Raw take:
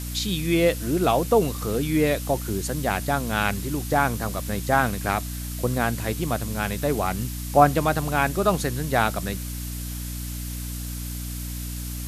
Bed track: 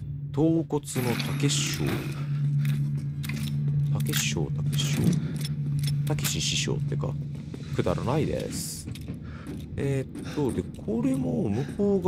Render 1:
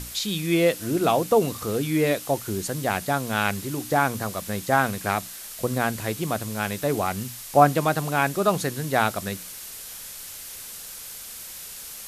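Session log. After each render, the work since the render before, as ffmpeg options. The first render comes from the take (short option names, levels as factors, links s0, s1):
-af "bandreject=f=60:t=h:w=6,bandreject=f=120:t=h:w=6,bandreject=f=180:t=h:w=6,bandreject=f=240:t=h:w=6,bandreject=f=300:t=h:w=6"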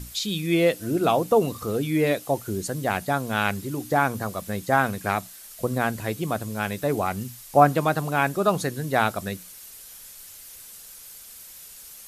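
-af "afftdn=nr=8:nf=-39"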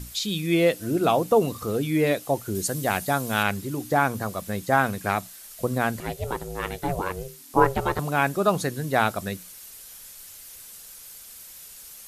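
-filter_complex "[0:a]asettb=1/sr,asplit=3[s0][s1][s2];[s0]atrim=end=2.554[s3];[s1]atrim=start=2.55:end=3.43,asetpts=PTS-STARTPTS,afade=t=in:d=0.004:c=qsin,afade=t=out:st=0.876:d=0.004:c=qsin,highshelf=f=4500:g=7.5[s4];[s2]atrim=start=3.426[s5];[s3][s4]acrossfade=d=0.004:c1=hsin:c2=qsin[s6];[s6][s5]acrossfade=d=0.004:c1=qsin:c2=hsin,asettb=1/sr,asplit=3[s7][s8][s9];[s7]atrim=end=6.004[s10];[s8]atrim=start=6:end=7.99,asetpts=PTS-STARTPTS,afade=t=in:d=0.004:c=qsin,afade=t=out:st=1.986:d=0.004:c=qsin,aeval=exprs='val(0)*sin(2*PI*270*n/s)':c=same[s11];[s9]atrim=start=7.986[s12];[s10][s11]acrossfade=d=0.004:c1=hsin:c2=qsin[s13];[s13][s12]acrossfade=d=0.004:c1=qsin:c2=hsin"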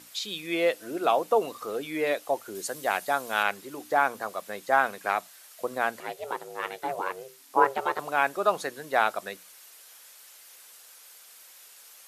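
-af "highpass=530,highshelf=f=4400:g=-9"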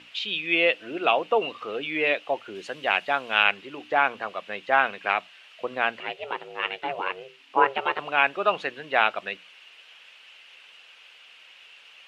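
-af "lowpass=f=2800:t=q:w=5.8"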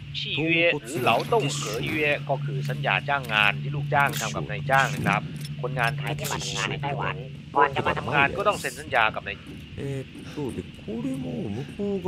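-filter_complex "[1:a]volume=0.631[s0];[0:a][s0]amix=inputs=2:normalize=0"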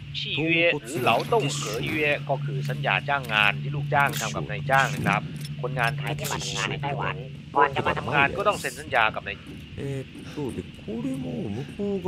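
-af anull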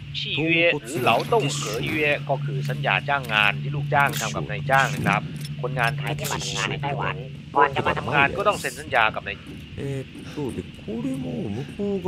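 -af "volume=1.26,alimiter=limit=0.708:level=0:latency=1"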